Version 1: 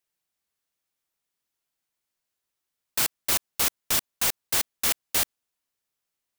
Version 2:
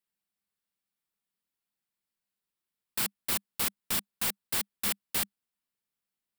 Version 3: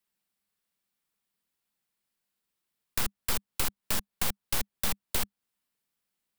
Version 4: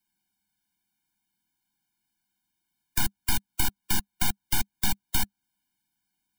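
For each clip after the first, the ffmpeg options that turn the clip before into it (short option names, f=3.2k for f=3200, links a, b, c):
-af "equalizer=f=200:t=o:w=0.33:g=11,equalizer=f=630:t=o:w=0.33:g=-4,equalizer=f=6.3k:t=o:w=0.33:g=-7,volume=-5.5dB"
-filter_complex "[0:a]aeval=exprs='0.158*(cos(1*acos(clip(val(0)/0.158,-1,1)))-cos(1*PI/2))+0.0794*(cos(4*acos(clip(val(0)/0.158,-1,1)))-cos(4*PI/2))':c=same,acrossover=split=190|460|1100|5300[a][b][c][d][e];[a]acompressor=threshold=-33dB:ratio=4[f];[b]acompressor=threshold=-54dB:ratio=4[g];[c]acompressor=threshold=-46dB:ratio=4[h];[d]acompressor=threshold=-43dB:ratio=4[i];[e]acompressor=threshold=-37dB:ratio=4[j];[f][g][h][i][j]amix=inputs=5:normalize=0,volume=5dB"
-af "afftfilt=real='re*eq(mod(floor(b*sr/1024/350),2),0)':imag='im*eq(mod(floor(b*sr/1024/350),2),0)':win_size=1024:overlap=0.75,volume=6dB"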